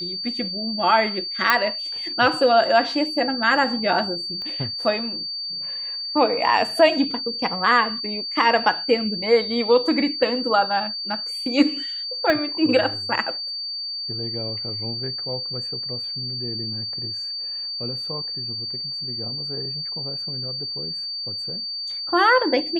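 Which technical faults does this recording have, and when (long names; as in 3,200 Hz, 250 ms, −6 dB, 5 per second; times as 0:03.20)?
whistle 4,600 Hz −27 dBFS
0:01.50: click −3 dBFS
0:04.42: click −24 dBFS
0:12.30: click −9 dBFS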